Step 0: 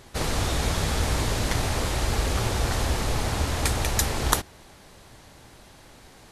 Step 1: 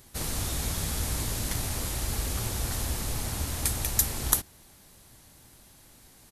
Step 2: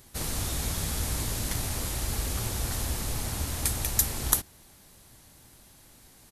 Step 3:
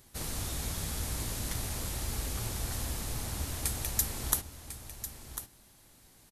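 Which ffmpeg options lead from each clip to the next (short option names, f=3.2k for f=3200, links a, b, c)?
-af "firequalizer=gain_entry='entry(240,0);entry(440,-5);entry(13000,14)':delay=0.05:min_phase=1,volume=-6dB"
-af anull
-af "aecho=1:1:1048:0.282,volume=-5dB"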